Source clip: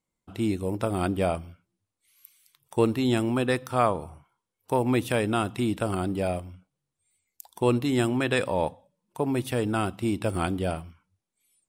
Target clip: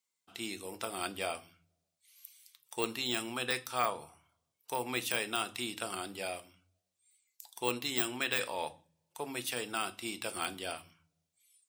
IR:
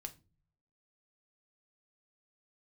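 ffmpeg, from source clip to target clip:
-filter_complex "[0:a]asplit=2[a][b];[1:a]atrim=start_sample=2205,lowpass=6.7k,lowshelf=f=400:g=4[c];[b][c]afir=irnorm=-1:irlink=0,volume=10dB[d];[a][d]amix=inputs=2:normalize=0,deesser=0.55,aderivative"

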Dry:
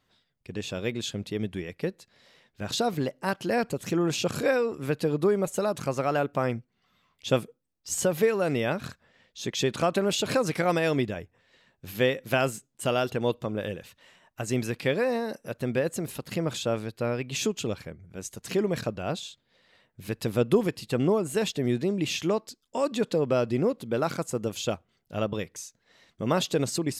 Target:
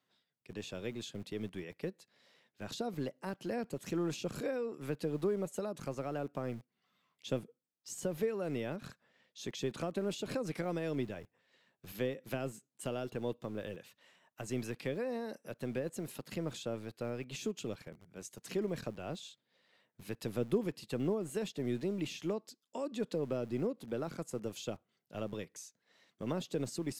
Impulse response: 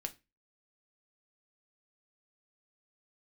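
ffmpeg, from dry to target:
-filter_complex "[0:a]acrossover=split=490[a][b];[b]acompressor=threshold=-35dB:ratio=4[c];[a][c]amix=inputs=2:normalize=0,acrossover=split=120|1500|7100[d][e][f][g];[d]acrusher=bits=5:dc=4:mix=0:aa=0.000001[h];[h][e][f][g]amix=inputs=4:normalize=0,volume=-8.5dB"

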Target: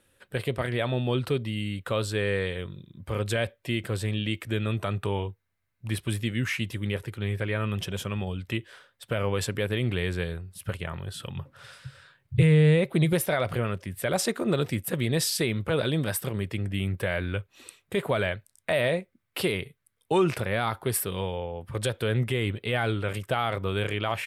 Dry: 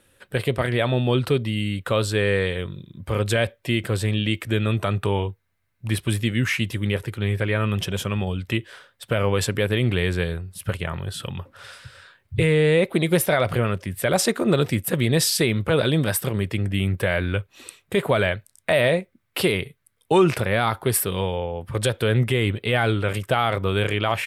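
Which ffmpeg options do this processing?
-filter_complex "[0:a]asettb=1/sr,asplit=3[a][b][c];[a]atrim=end=11.364[d];[b]atrim=start=11.36:end=13.13,asetpts=PTS-STARTPTS,afade=t=in:d=0.004:c=qsin,afade=t=out:st=1.766:d=0.004:c=qsin,equalizer=f=140:t=o:w=0.43:g=14[e];[c]atrim=start=13.126[f];[d][e]acrossfade=d=0.004:c1=hsin:c2=qsin[g];[g][f]acrossfade=d=0.004:c1=qsin:c2=hsin,volume=-6dB"

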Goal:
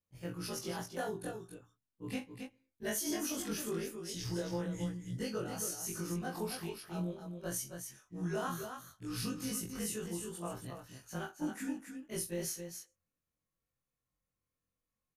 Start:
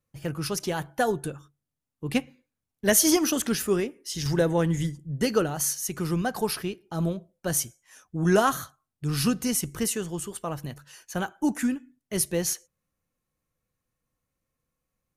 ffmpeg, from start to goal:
-filter_complex "[0:a]afftfilt=real='re':imag='-im':win_size=2048:overlap=0.75,acompressor=threshold=-30dB:ratio=3,asplit=2[a][b];[b]aecho=0:1:43.73|271.1:0.282|0.447[c];[a][c]amix=inputs=2:normalize=0,volume=-5.5dB"

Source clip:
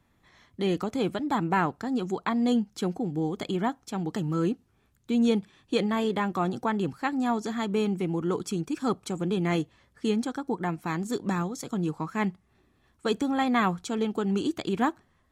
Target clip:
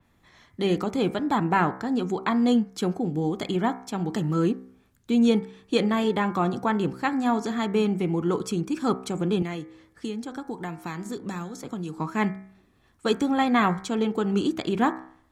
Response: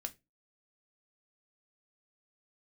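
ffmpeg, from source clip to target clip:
-filter_complex "[0:a]bandreject=f=64.05:t=h:w=4,bandreject=f=128.1:t=h:w=4,bandreject=f=192.15:t=h:w=4,bandreject=f=256.2:t=h:w=4,bandreject=f=320.25:t=h:w=4,bandreject=f=384.3:t=h:w=4,bandreject=f=448.35:t=h:w=4,bandreject=f=512.4:t=h:w=4,bandreject=f=576.45:t=h:w=4,bandreject=f=640.5:t=h:w=4,bandreject=f=704.55:t=h:w=4,bandreject=f=768.6:t=h:w=4,bandreject=f=832.65:t=h:w=4,bandreject=f=896.7:t=h:w=4,bandreject=f=960.75:t=h:w=4,bandreject=f=1.0248k:t=h:w=4,bandreject=f=1.08885k:t=h:w=4,bandreject=f=1.1529k:t=h:w=4,bandreject=f=1.21695k:t=h:w=4,bandreject=f=1.281k:t=h:w=4,bandreject=f=1.34505k:t=h:w=4,bandreject=f=1.4091k:t=h:w=4,bandreject=f=1.47315k:t=h:w=4,bandreject=f=1.5372k:t=h:w=4,bandreject=f=1.60125k:t=h:w=4,bandreject=f=1.6653k:t=h:w=4,bandreject=f=1.72935k:t=h:w=4,bandreject=f=1.7934k:t=h:w=4,bandreject=f=1.85745k:t=h:w=4,bandreject=f=1.9215k:t=h:w=4,bandreject=f=1.98555k:t=h:w=4,bandreject=f=2.0496k:t=h:w=4,bandreject=f=2.11365k:t=h:w=4,bandreject=f=2.1777k:t=h:w=4,bandreject=f=2.24175k:t=h:w=4,bandreject=f=2.3058k:t=h:w=4,bandreject=f=2.36985k:t=h:w=4,asettb=1/sr,asplit=3[a][b][c];[a]atrim=end=9.424[d];[b]atrim=start=9.42:end=11.98,asetpts=PTS-STARTPTS,afade=t=in:d=0.004:c=qsin,afade=t=out:st=2.556:d=0.004:c=qsin,acrossover=split=98|2600[e][f][g];[e]acompressor=threshold=-57dB:ratio=4[h];[f]acompressor=threshold=-35dB:ratio=4[i];[g]acompressor=threshold=-49dB:ratio=4[j];[h][i][j]amix=inputs=3:normalize=0[k];[c]atrim=start=11.976[l];[d][k]acrossfade=d=0.004:c1=hsin:c2=qsin[m];[m][l]acrossfade=d=0.004:c1=qsin:c2=hsin,adynamicequalizer=threshold=0.00398:dfrequency=4500:dqfactor=0.7:tfrequency=4500:tqfactor=0.7:attack=5:release=100:ratio=0.375:range=2:mode=cutabove:tftype=highshelf,volume=3.5dB"

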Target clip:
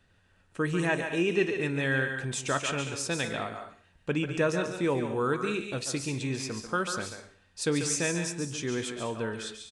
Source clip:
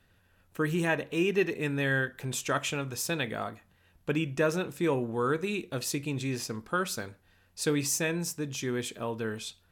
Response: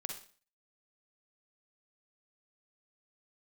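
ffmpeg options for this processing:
-filter_complex "[0:a]asplit=2[a][b];[1:a]atrim=start_sample=2205,lowshelf=f=230:g=-10,adelay=141[c];[b][c]afir=irnorm=-1:irlink=0,volume=-4dB[d];[a][d]amix=inputs=2:normalize=0,aresample=22050,aresample=44100"

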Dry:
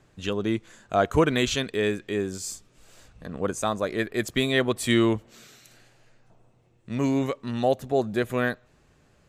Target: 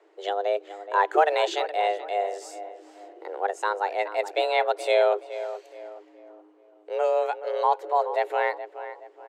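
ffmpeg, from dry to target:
-filter_complex "[0:a]afreqshift=300,asettb=1/sr,asplit=3[a][b][c];[a]atrim=end=1.194[d];[b]atrim=start=1.19:end=1.62,asetpts=PTS-STARTPTS,afade=t=in:d=0.004:c=qsin,afade=t=out:st=0.426:d=0.004:c=qsin,acrusher=bits=8:mode=log:mix=0:aa=0.000001[e];[c]atrim=start=1.616[f];[d][e]acrossfade=d=0.004:c1=hsin:c2=qsin[g];[g][f]acrossfade=d=0.004:c1=qsin:c2=hsin,aemphasis=mode=reproduction:type=75fm,asplit=2[h][i];[i]adelay=423,lowpass=f=2.1k:p=1,volume=-12dB,asplit=2[j][k];[k]adelay=423,lowpass=f=2.1k:p=1,volume=0.39,asplit=2[l][m];[m]adelay=423,lowpass=f=2.1k:p=1,volume=0.39,asplit=2[n][o];[o]adelay=423,lowpass=f=2.1k:p=1,volume=0.39[p];[j][l][n][p]amix=inputs=4:normalize=0[q];[h][q]amix=inputs=2:normalize=0"

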